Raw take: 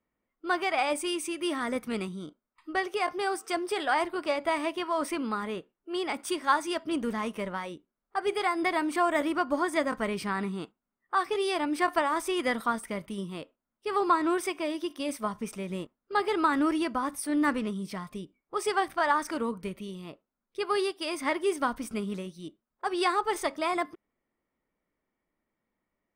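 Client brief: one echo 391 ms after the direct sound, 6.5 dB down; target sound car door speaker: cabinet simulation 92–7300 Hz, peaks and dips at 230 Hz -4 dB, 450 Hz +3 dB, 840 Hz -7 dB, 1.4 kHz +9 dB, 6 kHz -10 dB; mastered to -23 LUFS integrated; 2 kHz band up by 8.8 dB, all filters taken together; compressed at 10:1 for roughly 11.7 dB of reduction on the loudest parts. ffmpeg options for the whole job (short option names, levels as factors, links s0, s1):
-af "equalizer=f=2000:t=o:g=7,acompressor=threshold=0.0355:ratio=10,highpass=92,equalizer=f=230:t=q:w=4:g=-4,equalizer=f=450:t=q:w=4:g=3,equalizer=f=840:t=q:w=4:g=-7,equalizer=f=1400:t=q:w=4:g=9,equalizer=f=6000:t=q:w=4:g=-10,lowpass=f=7300:w=0.5412,lowpass=f=7300:w=1.3066,aecho=1:1:391:0.473,volume=2.99"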